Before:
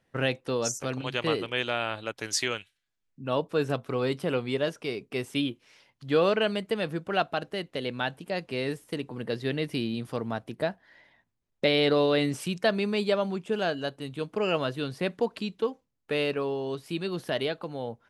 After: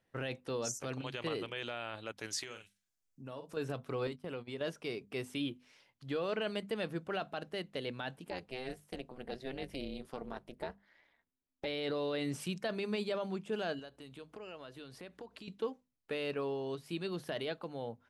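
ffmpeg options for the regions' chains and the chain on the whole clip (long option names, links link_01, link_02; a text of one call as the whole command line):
ffmpeg -i in.wav -filter_complex "[0:a]asettb=1/sr,asplit=3[link_01][link_02][link_03];[link_01]atrim=end=2.434[link_04];[link_02]atrim=start=2.43:end=3.57,asetpts=PTS-STARTPTS,afade=type=in:duration=0.004:curve=qsin,afade=type=out:start_time=1.136:duration=0.004:curve=qsin,highshelf=frequency=4700:width_type=q:width=1.5:gain=7,asplit=2[link_05][link_06];[link_06]adelay=46,volume=-10.5dB[link_07];[link_05][link_07]amix=inputs=2:normalize=0,atrim=end_sample=50274,acompressor=threshold=-38dB:ratio=3:attack=3.2:release=140:knee=1:detection=peak[link_08];[link_03]atrim=start=3.566[link_09];[link_04][link_08]acrossfade=duration=0.004:curve1=hsin:curve2=qsin[link_10];[link_10][link_09]acrossfade=duration=0.004:curve1=qsin:curve2=hsin,asettb=1/sr,asplit=3[link_11][link_12][link_13];[link_11]atrim=end=4.074[link_14];[link_12]atrim=start=4.07:end=4.61,asetpts=PTS-STARTPTS,afade=type=in:duration=0.004:curve=qsin,afade=type=out:start_time=0.536:duration=0.004:curve=qsin,agate=range=-20dB:threshold=-34dB:ratio=16:release=100:detection=peak,acompressor=threshold=-34dB:ratio=2.5:attack=3.2:release=140:knee=1:detection=peak[link_15];[link_13]atrim=start=4.606[link_16];[link_14][link_15]acrossfade=duration=0.004:curve1=hsin:curve2=qsin[link_17];[link_17][link_16]acrossfade=duration=0.004:curve1=qsin:curve2=hsin,asettb=1/sr,asplit=3[link_18][link_19][link_20];[link_18]atrim=end=8.304[link_21];[link_19]atrim=start=8.3:end=11.66,asetpts=PTS-STARTPTS,afade=type=in:duration=0.004:curve=qsin,afade=type=out:start_time=3.356:duration=0.004:curve=qsin,tremolo=f=260:d=0.947,equalizer=frequency=120:width=3.2:gain=-10[link_22];[link_20]atrim=start=11.656[link_23];[link_21][link_22]acrossfade=duration=0.004:curve1=hsin:curve2=qsin[link_24];[link_24][link_23]acrossfade=duration=0.004:curve1=qsin:curve2=hsin,asettb=1/sr,asplit=3[link_25][link_26][link_27];[link_25]atrim=end=13.794[link_28];[link_26]atrim=start=13.79:end=15.48,asetpts=PTS-STARTPTS,afade=type=in:duration=0.004:curve=qsin,afade=type=out:start_time=1.686:duration=0.004:curve=qsin,highpass=frequency=220:poles=1,acompressor=threshold=-40dB:ratio=4:attack=3.2:release=140:knee=1:detection=peak,aeval=exprs='val(0)+0.000398*(sin(2*PI*60*n/s)+sin(2*PI*2*60*n/s)/2+sin(2*PI*3*60*n/s)/3+sin(2*PI*4*60*n/s)/4+sin(2*PI*5*60*n/s)/5)':channel_layout=same[link_29];[link_27]atrim=start=15.476[link_30];[link_28][link_29]acrossfade=duration=0.004:curve1=hsin:curve2=qsin[link_31];[link_31][link_30]acrossfade=duration=0.004:curve1=qsin:curve2=hsin,alimiter=limit=-20.5dB:level=0:latency=1:release=14,bandreject=frequency=50:width_type=h:width=6,bandreject=frequency=100:width_type=h:width=6,bandreject=frequency=150:width_type=h:width=6,bandreject=frequency=200:width_type=h:width=6,bandreject=frequency=250:width_type=h:width=6,volume=-6.5dB" out.wav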